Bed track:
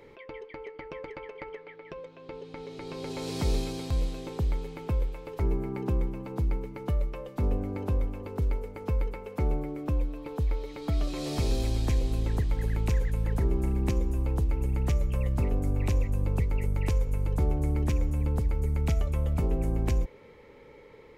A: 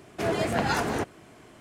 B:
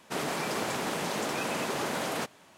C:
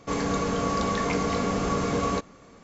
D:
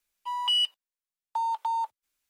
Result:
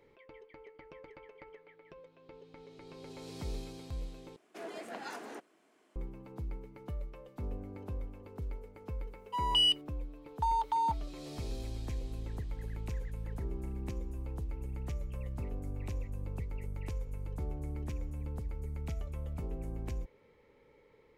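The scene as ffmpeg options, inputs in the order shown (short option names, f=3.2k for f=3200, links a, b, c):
-filter_complex "[0:a]volume=-12dB[a];[1:a]highpass=f=240:w=0.5412,highpass=f=240:w=1.3066[b];[a]asplit=2[c][d];[c]atrim=end=4.364[e];[b]atrim=end=1.6,asetpts=PTS-STARTPTS,volume=-16.5dB[f];[d]atrim=start=5.956[g];[4:a]atrim=end=2.29,asetpts=PTS-STARTPTS,volume=-2dB,afade=t=in:d=0.004:c=hsin,afade=t=out:st=2.286:d=0.004:c=hsin,adelay=9070[h];[e][f]acrossfade=d=0.004:c1=hsin:c2=hsin[i];[i][g]acrossfade=d=0.004:c1=hsin:c2=hsin[j];[j][h]amix=inputs=2:normalize=0"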